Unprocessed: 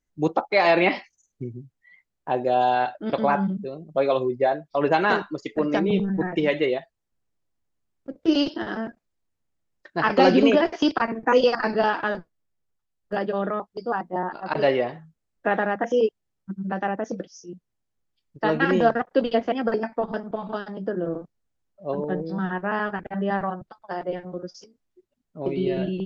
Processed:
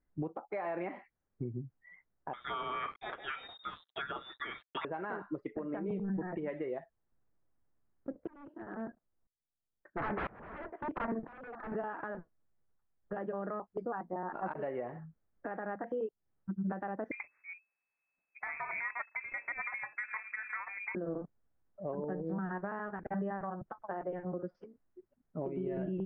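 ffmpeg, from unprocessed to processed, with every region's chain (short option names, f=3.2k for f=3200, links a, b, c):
-filter_complex "[0:a]asettb=1/sr,asplit=3[a][b][c];[a]atrim=end=2.334[d];[b]atrim=start=2.33:end=4.85,asetpts=PTS-STARTPTS,afade=t=in:d=0.004:c=qsin,afade=t=out:st=2.516:d=0.004:c=qsin,highshelf=f=1.6k:t=q:w=1.5:g=13.5,lowpass=f=3.3k:t=q:w=0.5098,lowpass=f=3.3k:t=q:w=0.6013,lowpass=f=3.3k:t=q:w=0.9,lowpass=f=3.3k:t=q:w=2.563,afreqshift=-3900,acrusher=bits=5:mix=0:aa=0.5[e];[c]atrim=start=4.846[f];[d][e]acrossfade=d=0.004:c1=hsin:c2=qsin[g];[g][f]acrossfade=d=0.004:c1=qsin:c2=hsin,asettb=1/sr,asplit=3[h][i][j];[h]atrim=end=8.274[k];[i]atrim=start=8.27:end=11.72,asetpts=PTS-STARTPTS,afade=t=in:d=0.004:c=qsin,afade=t=out:st=3.446:d=0.004:c=qsin,lowpass=1.9k,aeval=exprs='0.0794*(abs(mod(val(0)/0.0794+3,4)-2)-1)':c=same,aeval=exprs='val(0)*pow(10,-26*if(lt(mod(-1*n/s,1),2*abs(-1)/1000),1-mod(-1*n/s,1)/(2*abs(-1)/1000),(mod(-1*n/s,1)-2*abs(-1)/1000)/(1-2*abs(-1)/1000))/20)':c=same[l];[j]atrim=start=11.716[m];[k][l]acrossfade=d=0.004:c1=hsin:c2=qsin[n];[n][m]acrossfade=d=0.004:c1=qsin:c2=hsin,asettb=1/sr,asplit=3[o][p][q];[o]atrim=end=17.114[r];[p]atrim=start=17.11:end=20.95,asetpts=PTS-STARTPTS,afade=t=in:d=0.004:c=qsin,afade=t=out:st=3.836:d=0.004:c=qsin,aeval=exprs='if(lt(val(0),0),0.708*val(0),val(0))':c=same,lowpass=f=2.2k:t=q:w=0.5098,lowpass=f=2.2k:t=q:w=0.6013,lowpass=f=2.2k:t=q:w=0.9,lowpass=f=2.2k:t=q:w=2.563,afreqshift=-2600[s];[q]atrim=start=20.946[t];[r][s]acrossfade=d=0.004:c1=hsin:c2=qsin[u];[u][t]acrossfade=d=0.004:c1=qsin:c2=hsin,lowpass=f=1.8k:w=0.5412,lowpass=f=1.8k:w=1.3066,acompressor=threshold=-30dB:ratio=16,alimiter=level_in=5.5dB:limit=-24dB:level=0:latency=1:release=334,volume=-5.5dB,volume=1.5dB"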